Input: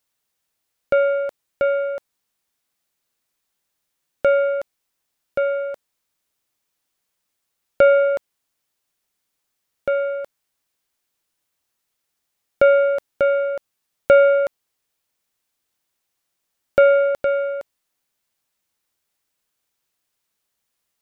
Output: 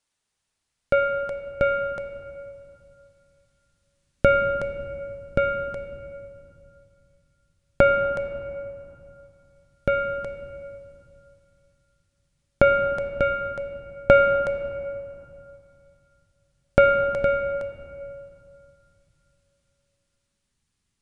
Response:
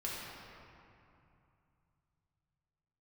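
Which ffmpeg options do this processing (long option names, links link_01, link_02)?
-filter_complex "[0:a]asubboost=boost=9:cutoff=200,dynaudnorm=framelen=370:gausssize=11:maxgain=11.5dB,asplit=2[link_01][link_02];[1:a]atrim=start_sample=2205[link_03];[link_02][link_03]afir=irnorm=-1:irlink=0,volume=-8dB[link_04];[link_01][link_04]amix=inputs=2:normalize=0,aresample=22050,aresample=44100,volume=-2.5dB"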